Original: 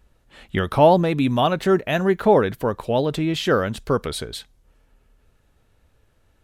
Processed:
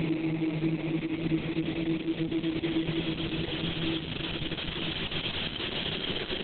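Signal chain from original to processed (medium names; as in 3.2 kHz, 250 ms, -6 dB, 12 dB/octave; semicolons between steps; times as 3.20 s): tracing distortion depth 0.2 ms; spectral selection erased 0.33–1.29 s, 260–2400 Hz; low-pass 9.2 kHz 12 dB/octave; compression 6:1, threshold -33 dBFS, peak gain reduction 21 dB; shuffle delay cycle 943 ms, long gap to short 1.5:1, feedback 40%, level -17 dB; Paulstretch 37×, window 0.25 s, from 3.25 s; trim +6 dB; Opus 6 kbps 48 kHz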